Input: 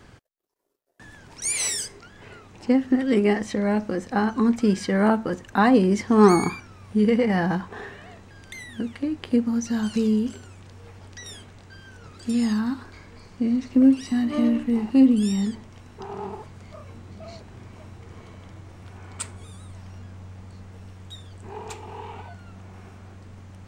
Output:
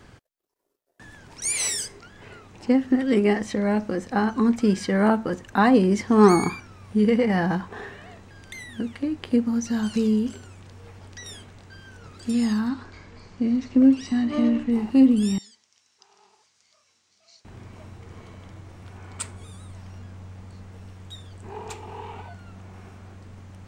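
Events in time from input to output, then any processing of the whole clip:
12.69–14.72 LPF 7700 Hz 24 dB/oct
15.38–17.45 band-pass 5700 Hz, Q 2.1

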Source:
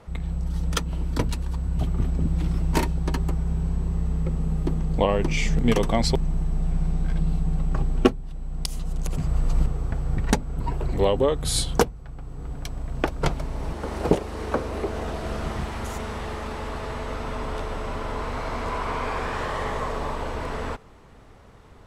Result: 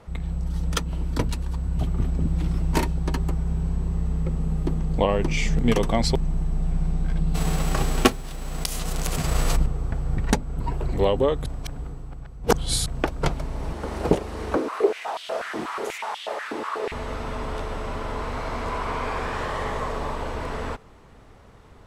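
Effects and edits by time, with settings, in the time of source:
7.34–9.55 spectral whitening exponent 0.6
11.46–12.86 reverse
14.56–16.92 stepped high-pass 8.2 Hz 300–3200 Hz

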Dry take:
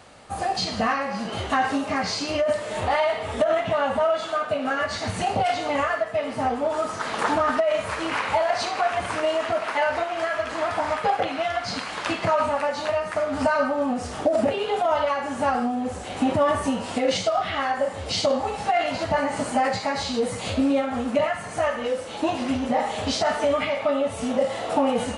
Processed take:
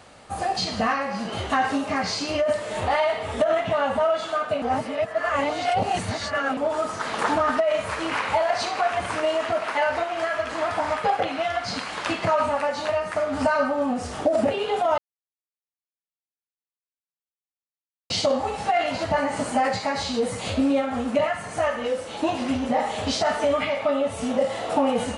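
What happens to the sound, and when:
4.62–6.57 reverse
14.98–18.1 mute

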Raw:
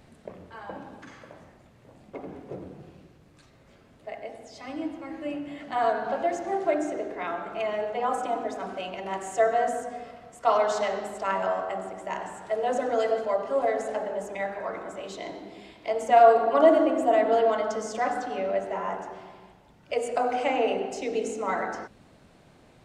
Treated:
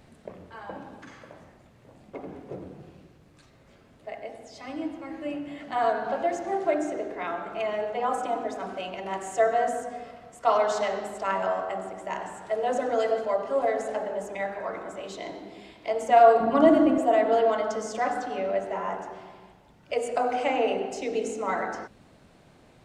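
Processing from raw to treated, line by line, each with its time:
16.4–16.98 resonant low shelf 300 Hz +11 dB, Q 1.5

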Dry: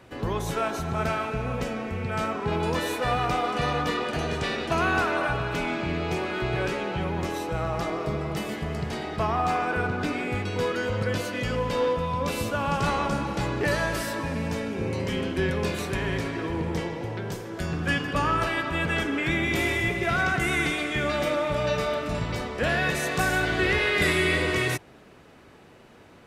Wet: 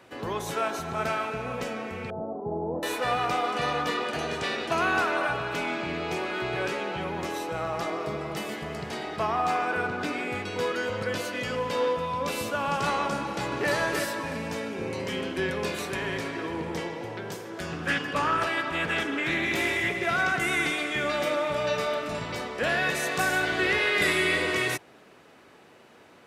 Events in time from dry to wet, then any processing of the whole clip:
2.1–2.83 Chebyshev low-pass 790 Hz, order 4
13.19–13.72 echo throw 0.32 s, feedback 30%, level -4.5 dB
17.51–20.07 Doppler distortion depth 0.18 ms
whole clip: HPF 320 Hz 6 dB/oct

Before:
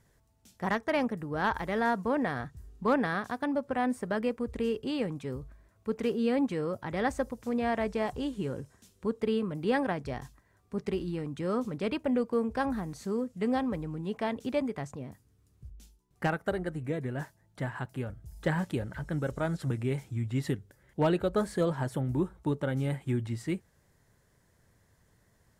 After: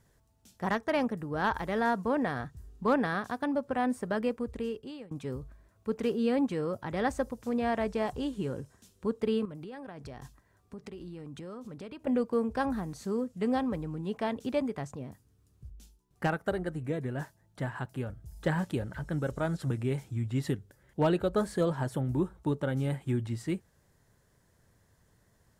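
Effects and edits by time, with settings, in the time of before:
4.34–5.11 fade out, to -22 dB
9.45–12.07 compressor 16:1, threshold -39 dBFS
whole clip: bell 2100 Hz -3 dB 0.39 oct

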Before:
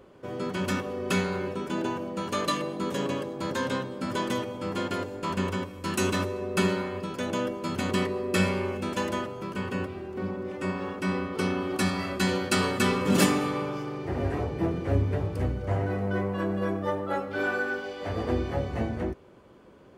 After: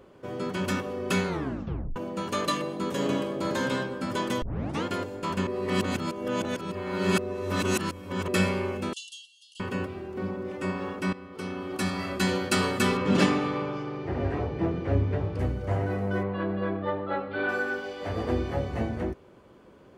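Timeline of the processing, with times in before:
1.27 tape stop 0.69 s
2.94–3.77 reverb throw, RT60 0.89 s, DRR 3 dB
4.42 tape start 0.42 s
5.47–8.28 reverse
8.93–9.6 brick-wall FIR band-pass 2700–11000 Hz
11.13–12.16 fade in, from -16 dB
12.97–15.39 LPF 4600 Hz
16.23–17.49 elliptic low-pass 4200 Hz, stop band 50 dB

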